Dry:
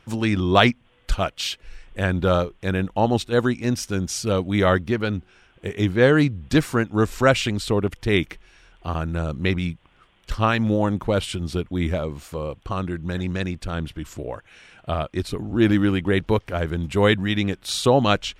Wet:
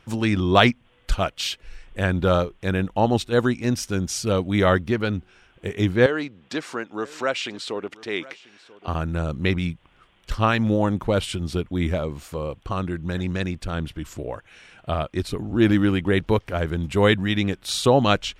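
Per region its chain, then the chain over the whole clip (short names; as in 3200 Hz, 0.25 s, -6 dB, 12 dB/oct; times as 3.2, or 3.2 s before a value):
6.06–8.88 compressor 1.5:1, threshold -28 dBFS + BPF 350–6500 Hz + echo 0.989 s -20.5 dB
whole clip: dry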